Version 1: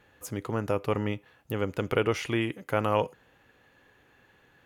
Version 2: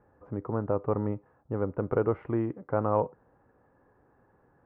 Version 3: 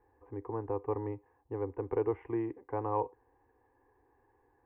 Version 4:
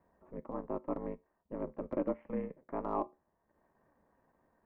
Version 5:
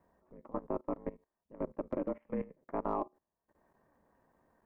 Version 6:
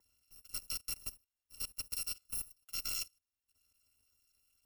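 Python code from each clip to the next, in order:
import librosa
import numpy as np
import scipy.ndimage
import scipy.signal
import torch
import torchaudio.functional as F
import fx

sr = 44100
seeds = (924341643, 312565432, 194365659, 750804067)

y1 = scipy.signal.sosfilt(scipy.signal.butter(4, 1200.0, 'lowpass', fs=sr, output='sos'), x)
y2 = fx.peak_eq(y1, sr, hz=180.0, db=-13.5, octaves=0.64)
y2 = fx.fixed_phaser(y2, sr, hz=900.0, stages=8)
y2 = y2 * librosa.db_to_amplitude(-1.5)
y3 = y2 * np.sin(2.0 * np.pi * 130.0 * np.arange(len(y2)) / sr)
y3 = fx.comb_fb(y3, sr, f0_hz=74.0, decay_s=0.28, harmonics='all', damping=0.0, mix_pct=50)
y3 = fx.transient(y3, sr, attack_db=-2, sustain_db=-7)
y3 = y3 * librosa.db_to_amplitude(4.5)
y4 = fx.level_steps(y3, sr, step_db=19)
y4 = y4 * librosa.db_to_amplitude(4.5)
y5 = fx.bit_reversed(y4, sr, seeds[0], block=256)
y5 = y5 * librosa.db_to_amplitude(-4.0)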